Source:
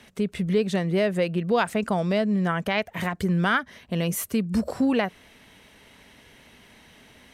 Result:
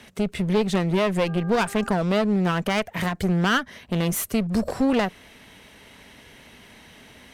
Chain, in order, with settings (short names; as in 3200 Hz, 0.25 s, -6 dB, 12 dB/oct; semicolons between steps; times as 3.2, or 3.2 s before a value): one-sided clip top -29.5 dBFS; 1.26–1.94 buzz 400 Hz, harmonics 4, -47 dBFS 0 dB/oct; gain +4 dB